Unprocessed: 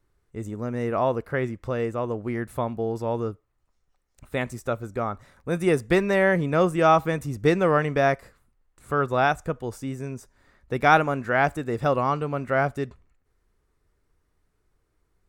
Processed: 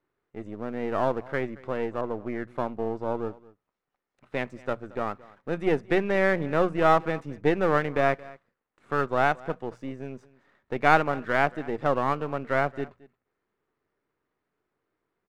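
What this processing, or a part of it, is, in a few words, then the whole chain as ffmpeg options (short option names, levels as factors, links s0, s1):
crystal radio: -filter_complex "[0:a]highpass=200,lowpass=2800,bandreject=f=60:t=h:w=6,bandreject=f=120:t=h:w=6,bandreject=f=180:t=h:w=6,aecho=1:1:223:0.0841,aeval=exprs='if(lt(val(0),0),0.447*val(0),val(0))':c=same,asettb=1/sr,asplit=3[s0][s1][s2];[s0]atrim=end=2.014[s3];[s1]atrim=start=2.01:end=3.25,asetpts=PTS-STARTPTS,afade=t=in:d=0.004:c=qsin,afade=t=out:st=1.236:d=0.004:c=qsin,adynamicequalizer=threshold=0.00562:dfrequency=2100:dqfactor=0.7:tfrequency=2100:tqfactor=0.7:attack=5:release=100:ratio=0.375:range=2:mode=cutabove:tftype=highshelf[s4];[s2]atrim=start=3.246[s5];[s3][s4]acrossfade=d=0.004:c1=hsin:c2=qsin[s6];[s6][s5]acrossfade=d=0.004:c1=qsin:c2=hsin"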